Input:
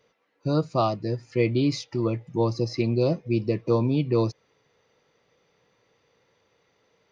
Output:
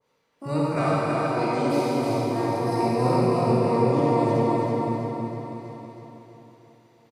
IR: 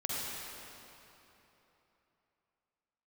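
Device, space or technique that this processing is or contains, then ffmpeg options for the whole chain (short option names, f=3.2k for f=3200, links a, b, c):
shimmer-style reverb: -filter_complex "[0:a]asettb=1/sr,asplit=3[a][b][c];[a]atrim=end=0.764[d];[b]atrim=start=0.76:end=1.86,asetpts=PTS-STARTPTS,afade=t=in:d=0.004:c=qsin,afade=t=out:st=1.096:d=0.004:c=qsin,highpass=f=230:p=1[e];[c]atrim=start=1.856[f];[d][e]acrossfade=d=0.004:c1=hsin:c2=qsin[g];[g][f]acrossfade=d=0.004:c1=qsin:c2=hsin,asettb=1/sr,asplit=3[h][i][j];[h]atrim=end=2.574[k];[i]atrim=start=2.57:end=3.63,asetpts=PTS-STARTPTS,afade=t=in:d=0.004:c=qsin,afade=t=out:st=1.056:d=0.004:c=qsin,asplit=2[l][m];[m]adelay=40,volume=-5dB[n];[l][n]amix=inputs=2:normalize=0,atrim=end_sample=46746[o];[j]atrim=start=3.626[p];[k][o]acrossfade=d=0.004:c1=hsin:c2=qsin[q];[q][p]acrossfade=d=0.004:c1=qsin:c2=hsin,asplit=2[r][s];[s]asetrate=88200,aresample=44100,atempo=0.5,volume=-4dB[t];[r][t]amix=inputs=2:normalize=0[u];[1:a]atrim=start_sample=2205[v];[u][v]afir=irnorm=-1:irlink=0,aecho=1:1:324|648|972|1296|1620|1944|2268:0.708|0.375|0.199|0.105|0.0559|0.0296|0.0157,adynamicequalizer=threshold=0.0178:dfrequency=1700:dqfactor=0.7:tfrequency=1700:tqfactor=0.7:attack=5:release=100:ratio=0.375:range=2:mode=cutabove:tftype=highshelf,volume=-6dB"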